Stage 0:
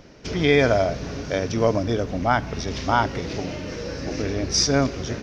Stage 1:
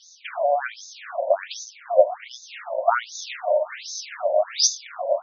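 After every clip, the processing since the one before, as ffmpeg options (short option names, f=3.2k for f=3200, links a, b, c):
-af "superequalizer=8b=3.98:15b=3.98,acompressor=threshold=-15dB:ratio=6,afftfilt=real='re*between(b*sr/1024,680*pow(5000/680,0.5+0.5*sin(2*PI*1.3*pts/sr))/1.41,680*pow(5000/680,0.5+0.5*sin(2*PI*1.3*pts/sr))*1.41)':imag='im*between(b*sr/1024,680*pow(5000/680,0.5+0.5*sin(2*PI*1.3*pts/sr))/1.41,680*pow(5000/680,0.5+0.5*sin(2*PI*1.3*pts/sr))*1.41)':win_size=1024:overlap=0.75,volume=7.5dB"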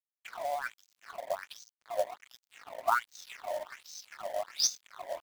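-af "highpass=f=1k:t=q:w=1.9,aeval=exprs='sgn(val(0))*max(abs(val(0))-0.0158,0)':c=same,acrusher=bits=4:mode=log:mix=0:aa=0.000001,volume=-8.5dB"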